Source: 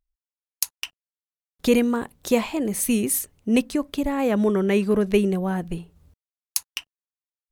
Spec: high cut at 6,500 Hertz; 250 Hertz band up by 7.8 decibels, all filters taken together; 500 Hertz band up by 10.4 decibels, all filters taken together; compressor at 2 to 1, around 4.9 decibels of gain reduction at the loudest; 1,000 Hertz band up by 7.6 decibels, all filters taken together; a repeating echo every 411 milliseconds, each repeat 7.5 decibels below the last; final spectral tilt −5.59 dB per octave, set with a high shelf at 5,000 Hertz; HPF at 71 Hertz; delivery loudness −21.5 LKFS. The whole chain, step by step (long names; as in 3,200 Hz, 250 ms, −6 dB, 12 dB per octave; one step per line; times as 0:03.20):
high-pass filter 71 Hz
low-pass filter 6,500 Hz
parametric band 250 Hz +7 dB
parametric band 500 Hz +9 dB
parametric band 1,000 Hz +5.5 dB
high-shelf EQ 5,000 Hz +8 dB
downward compressor 2 to 1, threshold −13 dBFS
repeating echo 411 ms, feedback 42%, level −7.5 dB
level −4 dB